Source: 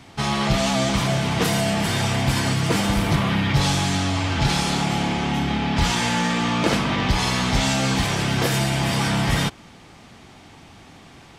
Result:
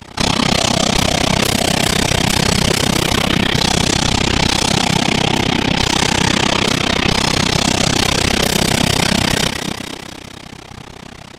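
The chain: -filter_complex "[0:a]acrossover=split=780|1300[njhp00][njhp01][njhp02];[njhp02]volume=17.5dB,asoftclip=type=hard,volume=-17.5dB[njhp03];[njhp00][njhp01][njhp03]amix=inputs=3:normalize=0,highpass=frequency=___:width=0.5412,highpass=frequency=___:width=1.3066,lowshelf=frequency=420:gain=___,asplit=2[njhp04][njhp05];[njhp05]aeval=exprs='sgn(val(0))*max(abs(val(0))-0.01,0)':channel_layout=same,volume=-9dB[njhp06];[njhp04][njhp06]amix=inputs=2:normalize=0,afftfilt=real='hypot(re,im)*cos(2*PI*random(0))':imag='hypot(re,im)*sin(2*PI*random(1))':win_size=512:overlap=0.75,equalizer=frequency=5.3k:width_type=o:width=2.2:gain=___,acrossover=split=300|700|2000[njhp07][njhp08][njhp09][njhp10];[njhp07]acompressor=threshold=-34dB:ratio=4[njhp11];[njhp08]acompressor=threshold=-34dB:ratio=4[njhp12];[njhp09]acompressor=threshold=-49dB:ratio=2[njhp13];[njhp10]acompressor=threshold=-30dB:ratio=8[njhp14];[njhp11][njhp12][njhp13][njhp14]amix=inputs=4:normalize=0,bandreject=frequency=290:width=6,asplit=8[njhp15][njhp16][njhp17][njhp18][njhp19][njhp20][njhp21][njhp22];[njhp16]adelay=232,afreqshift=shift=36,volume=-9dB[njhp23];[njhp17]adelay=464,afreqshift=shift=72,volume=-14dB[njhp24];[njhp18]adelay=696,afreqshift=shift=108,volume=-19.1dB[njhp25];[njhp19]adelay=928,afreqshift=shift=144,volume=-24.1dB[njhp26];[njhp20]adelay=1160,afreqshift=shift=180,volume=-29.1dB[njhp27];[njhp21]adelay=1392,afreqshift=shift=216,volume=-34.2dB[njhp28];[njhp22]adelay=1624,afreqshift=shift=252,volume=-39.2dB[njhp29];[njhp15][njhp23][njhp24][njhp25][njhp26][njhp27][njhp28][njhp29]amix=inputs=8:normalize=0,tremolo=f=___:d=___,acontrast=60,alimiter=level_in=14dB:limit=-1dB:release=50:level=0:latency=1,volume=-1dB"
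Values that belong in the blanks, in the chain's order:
47, 47, 2.5, 2.5, 32, 1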